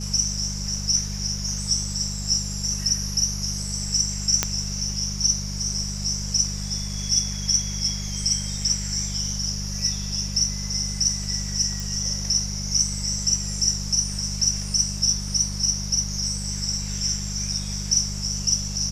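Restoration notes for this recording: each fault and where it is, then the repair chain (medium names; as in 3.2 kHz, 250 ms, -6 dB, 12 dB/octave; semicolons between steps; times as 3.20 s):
hum 50 Hz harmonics 4 -31 dBFS
4.43 s: pop -3 dBFS
11.80 s: pop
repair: de-click; de-hum 50 Hz, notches 4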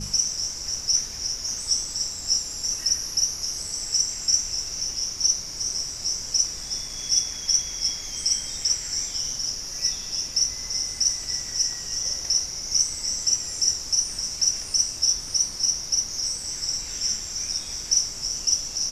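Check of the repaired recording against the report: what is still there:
4.43 s: pop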